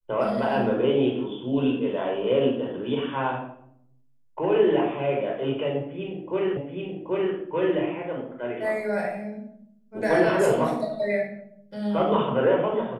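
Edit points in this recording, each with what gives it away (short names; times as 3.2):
6.57 repeat of the last 0.78 s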